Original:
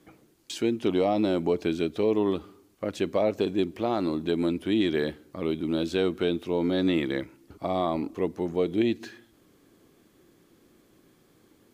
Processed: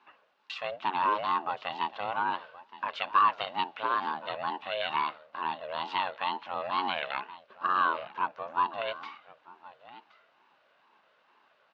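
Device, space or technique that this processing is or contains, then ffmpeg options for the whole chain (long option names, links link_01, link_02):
voice changer toy: -filter_complex "[0:a]asettb=1/sr,asplit=3[link_01][link_02][link_03];[link_01]atrim=end=2.384[link_04];[link_02]atrim=start=2.38:end=3.84,asetpts=PTS-STARTPTS,afade=type=in:duration=0.004:curve=qsin,afade=type=out:start_time=1.456:duration=0.004:curve=qsin,equalizer=frequency=3200:width=0.79:gain=4.5[link_05];[link_03]atrim=start=3.836[link_06];[link_04][link_05]acrossfade=duration=0.004:curve1=hsin:curve2=qsin[link_07];[link_07][link_06]acrossfade=duration=0.004:curve1=qsin:curve2=hsin,aecho=1:1:1072:0.133,aeval=exprs='val(0)*sin(2*PI*430*n/s+430*0.3/2.2*sin(2*PI*2.2*n/s))':channel_layout=same,highpass=530,equalizer=frequency=730:width_type=q:width=4:gain=-9,equalizer=frequency=1100:width_type=q:width=4:gain=9,equalizer=frequency=1500:width_type=q:width=4:gain=8,equalizer=frequency=2700:width_type=q:width=4:gain=6,lowpass=frequency=4100:width=0.5412,lowpass=frequency=4100:width=1.3066"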